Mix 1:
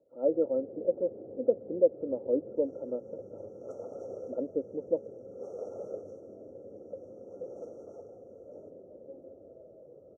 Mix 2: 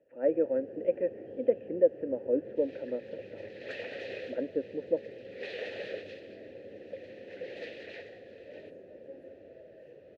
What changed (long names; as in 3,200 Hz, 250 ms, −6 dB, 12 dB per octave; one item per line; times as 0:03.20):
first sound: add high-shelf EQ 2,400 Hz +11 dB
master: remove linear-phase brick-wall band-stop 1,400–5,500 Hz